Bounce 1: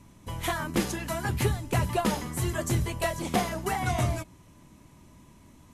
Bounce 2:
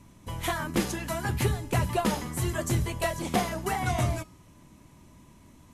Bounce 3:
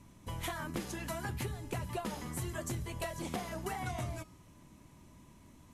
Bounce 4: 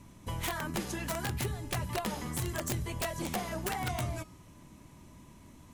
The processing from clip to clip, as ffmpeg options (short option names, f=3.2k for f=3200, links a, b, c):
-af "bandreject=f=419.2:t=h:w=4,bandreject=f=838.4:t=h:w=4,bandreject=f=1.2576k:t=h:w=4,bandreject=f=1.6768k:t=h:w=4,bandreject=f=2.096k:t=h:w=4,bandreject=f=2.5152k:t=h:w=4,bandreject=f=2.9344k:t=h:w=4,bandreject=f=3.3536k:t=h:w=4,bandreject=f=3.7728k:t=h:w=4,bandreject=f=4.192k:t=h:w=4,bandreject=f=4.6112k:t=h:w=4,bandreject=f=5.0304k:t=h:w=4,bandreject=f=5.4496k:t=h:w=4,bandreject=f=5.8688k:t=h:w=4,bandreject=f=6.288k:t=h:w=4,bandreject=f=6.7072k:t=h:w=4,bandreject=f=7.1264k:t=h:w=4,bandreject=f=7.5456k:t=h:w=4,bandreject=f=7.9648k:t=h:w=4,bandreject=f=8.384k:t=h:w=4,bandreject=f=8.8032k:t=h:w=4,bandreject=f=9.2224k:t=h:w=4,bandreject=f=9.6416k:t=h:w=4,bandreject=f=10.0608k:t=h:w=4,bandreject=f=10.48k:t=h:w=4,bandreject=f=10.8992k:t=h:w=4,bandreject=f=11.3184k:t=h:w=4,bandreject=f=11.7376k:t=h:w=4,bandreject=f=12.1568k:t=h:w=4,bandreject=f=12.576k:t=h:w=4,bandreject=f=12.9952k:t=h:w=4,bandreject=f=13.4144k:t=h:w=4"
-af "acompressor=threshold=-31dB:ratio=6,volume=-4dB"
-af "aeval=exprs='(mod(28.2*val(0)+1,2)-1)/28.2':c=same,volume=4dB"